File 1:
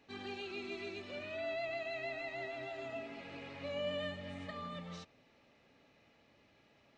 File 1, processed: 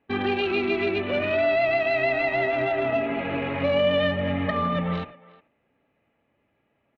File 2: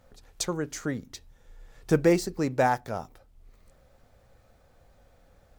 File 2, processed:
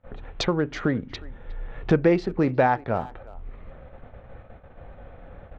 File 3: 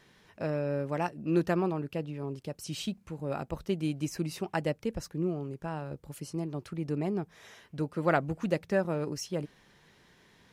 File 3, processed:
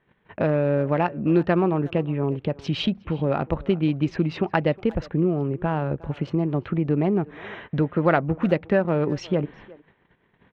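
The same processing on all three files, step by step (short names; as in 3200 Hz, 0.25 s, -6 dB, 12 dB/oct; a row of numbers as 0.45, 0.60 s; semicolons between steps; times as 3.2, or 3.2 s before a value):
Wiener smoothing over 9 samples; gate -59 dBFS, range -24 dB; LPF 3700 Hz 24 dB/oct; compressor 2:1, threshold -43 dBFS; speakerphone echo 0.36 s, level -20 dB; match loudness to -24 LUFS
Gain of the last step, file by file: +21.5, +16.0, +18.0 dB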